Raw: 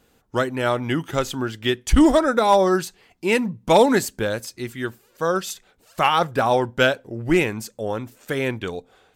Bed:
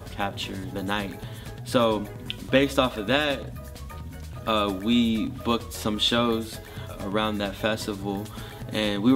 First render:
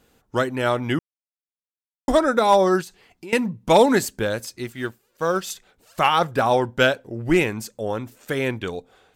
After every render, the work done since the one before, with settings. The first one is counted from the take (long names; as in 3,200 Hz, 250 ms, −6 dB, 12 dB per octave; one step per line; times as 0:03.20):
0:00.99–0:02.08: silence
0:02.81–0:03.33: downward compressor 4 to 1, threshold −36 dBFS
0:04.63–0:05.50: mu-law and A-law mismatch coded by A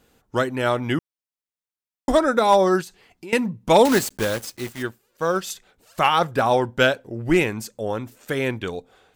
0:03.85–0:04.83: one scale factor per block 3 bits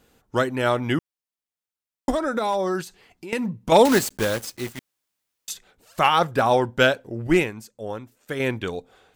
0:02.10–0:03.72: downward compressor 3 to 1, threshold −22 dBFS
0:04.79–0:05.48: fill with room tone
0:07.27–0:08.40: expander for the loud parts, over −38 dBFS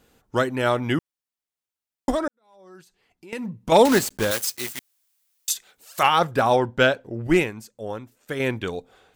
0:02.28–0:03.80: fade in quadratic
0:04.31–0:06.03: spectral tilt +3 dB per octave
0:06.56–0:07.24: high-shelf EQ 6,600 Hz −9 dB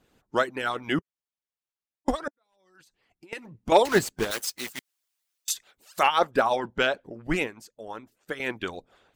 harmonic and percussive parts rebalanced harmonic −18 dB
high-shelf EQ 7,800 Hz −8 dB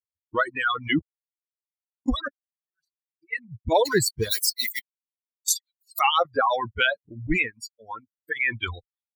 spectral dynamics exaggerated over time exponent 3
envelope flattener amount 70%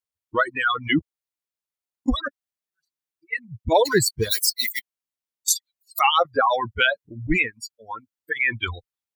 level +2.5 dB